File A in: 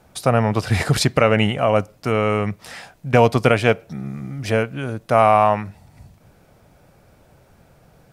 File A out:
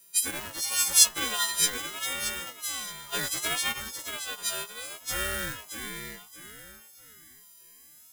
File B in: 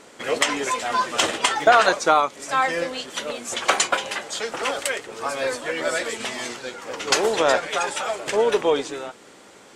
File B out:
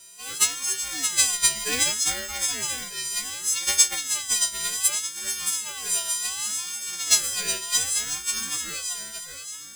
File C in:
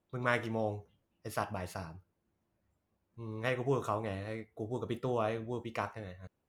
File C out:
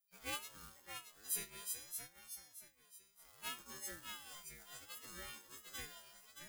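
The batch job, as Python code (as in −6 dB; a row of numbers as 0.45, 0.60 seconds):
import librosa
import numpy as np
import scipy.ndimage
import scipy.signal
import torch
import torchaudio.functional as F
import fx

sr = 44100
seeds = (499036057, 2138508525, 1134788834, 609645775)

p1 = fx.freq_snap(x, sr, grid_st=3)
p2 = fx.dynamic_eq(p1, sr, hz=170.0, q=1.0, threshold_db=-32.0, ratio=4.0, max_db=4)
p3 = fx.quant_companded(p2, sr, bits=4)
p4 = p2 + F.gain(torch.from_numpy(p3), -6.0).numpy()
p5 = scipy.signal.lfilter([1.0, -0.97], [1.0], p4)
p6 = p5 + fx.echo_feedback(p5, sr, ms=624, feedback_pct=32, wet_db=-7.0, dry=0)
p7 = fx.ring_lfo(p6, sr, carrier_hz=880.0, swing_pct=25, hz=0.66)
y = F.gain(torch.from_numpy(p7), -4.0).numpy()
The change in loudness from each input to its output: −8.5, −0.5, −10.0 LU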